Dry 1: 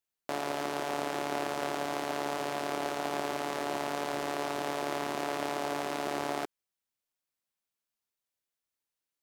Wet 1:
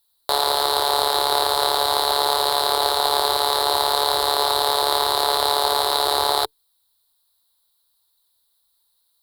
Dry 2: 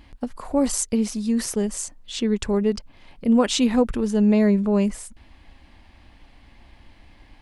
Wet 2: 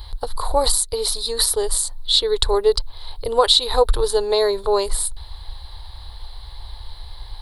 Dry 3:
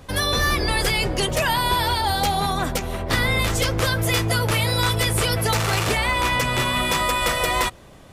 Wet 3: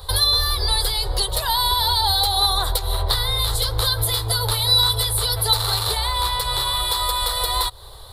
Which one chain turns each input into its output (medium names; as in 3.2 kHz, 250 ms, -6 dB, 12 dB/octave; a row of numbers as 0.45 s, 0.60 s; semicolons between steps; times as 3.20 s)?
amplifier tone stack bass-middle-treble 10-0-10; compression 6:1, threshold -32 dBFS; FFT filter 110 Hz 0 dB, 210 Hz -29 dB, 300 Hz +1 dB, 440 Hz +7 dB, 620 Hz -4 dB, 910 Hz +2 dB, 2.6 kHz -22 dB, 4 kHz +6 dB, 6.1 kHz -21 dB, 9.5 kHz -3 dB; normalise loudness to -19 LUFS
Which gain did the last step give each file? +26.5 dB, +22.0 dB, +17.0 dB